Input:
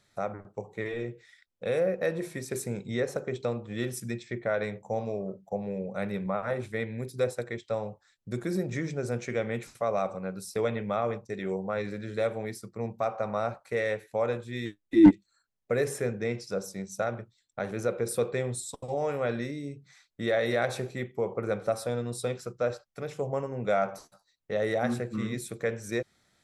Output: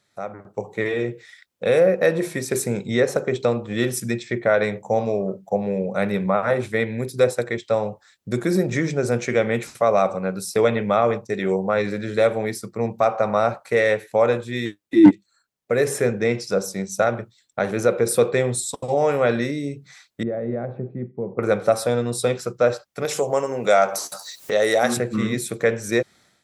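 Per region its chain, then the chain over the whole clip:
0:20.23–0:21.39: resonant band-pass 170 Hz, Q 1.1 + high-frequency loss of the air 440 metres
0:23.05–0:24.97: bass and treble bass −10 dB, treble +11 dB + upward compression, threshold −30 dBFS
whole clip: high-pass filter 130 Hz 6 dB per octave; automatic gain control gain up to 11 dB

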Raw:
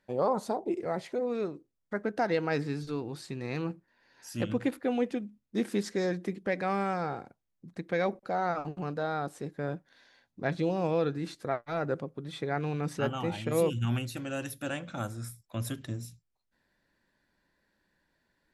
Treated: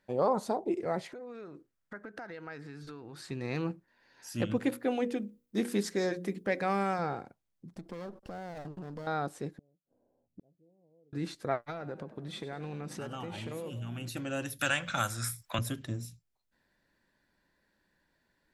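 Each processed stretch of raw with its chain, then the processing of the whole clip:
0:01.09–0:03.31: downward compressor, threshold −43 dBFS + parametric band 1,500 Hz +8.5 dB 0.94 octaves
0:04.56–0:06.99: high-shelf EQ 11,000 Hz +11.5 dB + mains-hum notches 60/120/180/240/300/360/420/480/540 Hz
0:07.71–0:09.07: lower of the sound and its delayed copy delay 0.39 ms + parametric band 2,300 Hz −10.5 dB + downward compressor 8 to 1, threshold −38 dBFS
0:09.58–0:11.13: inverse Chebyshev low-pass filter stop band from 2,100 Hz, stop band 60 dB + gate with flip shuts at −36 dBFS, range −37 dB
0:11.70–0:14.09: downward compressor 10 to 1, threshold −35 dBFS + echo with shifted repeats 98 ms, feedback 52%, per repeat +58 Hz, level −14.5 dB
0:14.59–0:15.59: drawn EQ curve 110 Hz 0 dB, 320 Hz −6 dB, 1,500 Hz +10 dB + multiband upward and downward compressor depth 70%
whole clip: no processing

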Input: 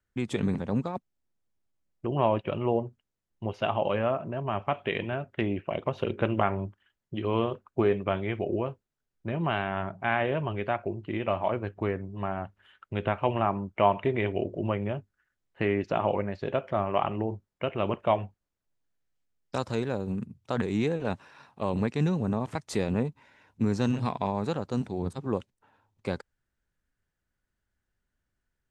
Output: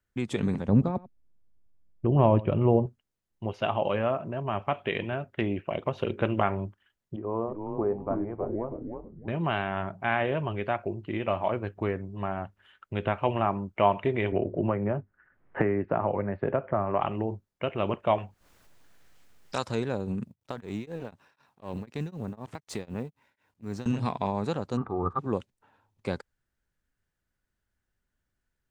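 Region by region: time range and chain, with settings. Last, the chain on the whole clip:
0:00.68–0:02.86: spectral tilt −3 dB per octave + single-tap delay 92 ms −19.5 dB
0:07.16–0:09.28: low-pass filter 1,000 Hz 24 dB per octave + spectral tilt +2.5 dB per octave + echo with shifted repeats 316 ms, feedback 32%, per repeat −96 Hz, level −5 dB
0:14.32–0:17.01: low-pass filter 1,900 Hz 24 dB per octave + multiband upward and downward compressor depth 100%
0:18.18–0:19.69: tilt shelving filter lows −4.5 dB, about 710 Hz + upward compression, threshold −33 dBFS + one half of a high-frequency compander decoder only
0:20.24–0:23.86: mu-law and A-law mismatch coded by A + downward compressor 2 to 1, threshold −31 dBFS + tremolo along a rectified sine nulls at 4 Hz
0:24.77–0:25.19: low-pass with resonance 1,200 Hz, resonance Q 15 + comb filter 2.5 ms, depth 36%
whole clip: no processing

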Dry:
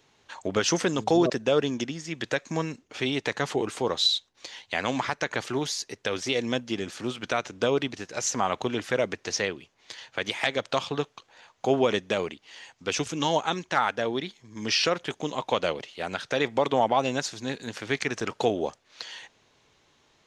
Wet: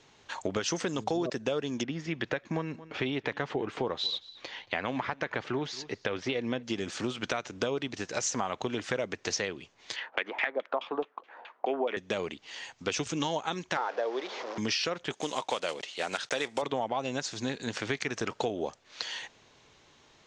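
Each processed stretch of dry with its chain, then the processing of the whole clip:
0:01.83–0:06.63: low-pass filter 2,900 Hz + single-tap delay 226 ms −24 dB
0:09.96–0:11.97: high-pass filter 260 Hz 24 dB per octave + auto-filter low-pass saw down 4.7 Hz 630–3,100 Hz
0:13.77–0:14.58: linear delta modulator 32 kbit/s, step −32.5 dBFS + high-pass filter 450 Hz 24 dB per octave + tilt shelving filter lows +8.5 dB, about 1,300 Hz
0:15.13–0:16.63: one scale factor per block 5 bits + high-pass filter 400 Hz 6 dB per octave + high-shelf EQ 6,400 Hz +7 dB
whole clip: Butterworth low-pass 8,300 Hz 36 dB per octave; downward compressor 5 to 1, threshold −32 dBFS; level +3.5 dB

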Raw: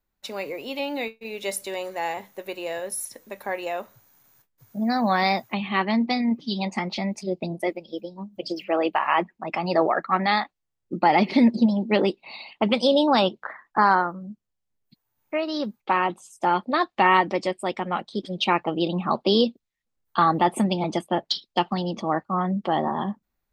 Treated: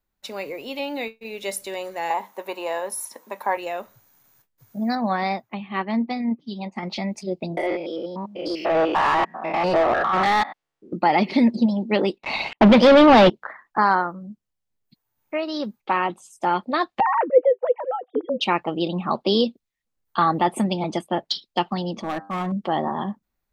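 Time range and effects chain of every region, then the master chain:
0:02.10–0:03.57: high-pass filter 190 Hz 24 dB per octave + parametric band 960 Hz +14 dB 0.69 octaves
0:04.95–0:06.83: high-shelf EQ 3,300 Hz −11.5 dB + expander for the loud parts, over −42 dBFS
0:07.57–0:10.93: spectrum averaged block by block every 100 ms + mid-hump overdrive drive 21 dB, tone 1,800 Hz, clips at −10.5 dBFS
0:12.18–0:13.30: leveller curve on the samples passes 5 + high-frequency loss of the air 250 metres
0:17.00–0:18.41: three sine waves on the formant tracks + low-pass filter 1,100 Hz + parametric band 500 Hz +14 dB 0.25 octaves
0:22.02–0:22.52: hard clipping −22.5 dBFS + notch filter 5,300 Hz, Q 14 + hum removal 98.98 Hz, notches 17
whole clip: no processing

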